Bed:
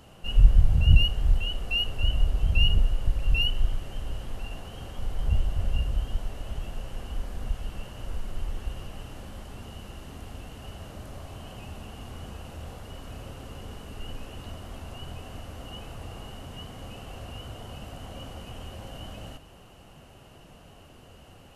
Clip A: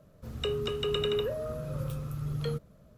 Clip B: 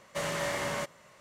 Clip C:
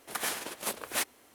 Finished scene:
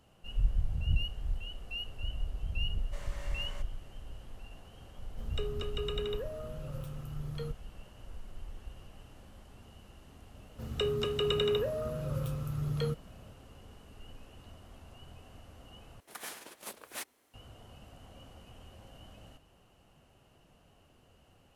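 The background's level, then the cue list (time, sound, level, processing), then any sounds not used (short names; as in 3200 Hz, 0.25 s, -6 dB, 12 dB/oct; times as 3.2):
bed -12.5 dB
2.77 add B -17 dB
4.94 add A -7 dB
10.36 add A
16 replace with C -10.5 dB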